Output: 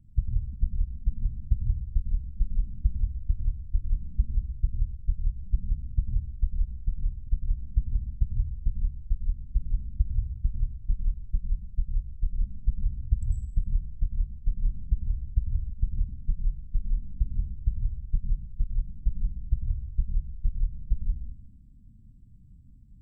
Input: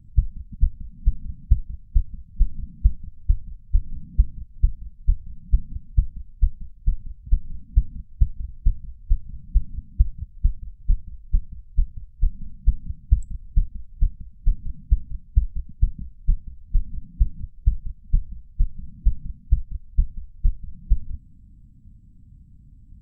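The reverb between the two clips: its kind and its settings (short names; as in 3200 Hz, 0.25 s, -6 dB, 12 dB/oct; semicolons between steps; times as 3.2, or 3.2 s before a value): plate-style reverb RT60 0.78 s, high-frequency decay 0.9×, pre-delay 85 ms, DRR -0.5 dB; gain -7 dB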